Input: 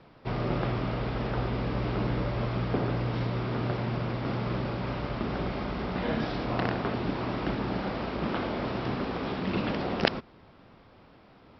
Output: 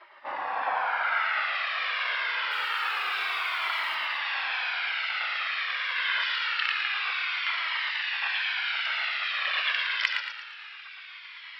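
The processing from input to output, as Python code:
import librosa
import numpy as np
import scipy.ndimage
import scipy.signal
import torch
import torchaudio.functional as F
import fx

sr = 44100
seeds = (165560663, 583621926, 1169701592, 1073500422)

p1 = fx.spec_gate(x, sr, threshold_db=-15, keep='weak')
p2 = fx.filter_sweep_bandpass(p1, sr, from_hz=530.0, to_hz=2900.0, start_s=0.42, end_s=1.55, q=1.3)
p3 = fx.over_compress(p2, sr, threshold_db=-57.0, ratio=-1.0)
p4 = p2 + (p3 * librosa.db_to_amplitude(-3.0))
p5 = fx.quant_companded(p4, sr, bits=6, at=(2.51, 3.95))
p6 = fx.curve_eq(p5, sr, hz=(250.0, 1600.0, 5400.0), db=(0, 14, 6))
p7 = fx.cheby_harmonics(p6, sr, harmonics=(3,), levels_db=(-32,), full_scale_db=-7.0)
p8 = p7 + fx.echo_feedback(p7, sr, ms=114, feedback_pct=47, wet_db=-6, dry=0)
p9 = fx.comb_cascade(p8, sr, direction='falling', hz=0.26)
y = p9 * librosa.db_to_amplitude(7.5)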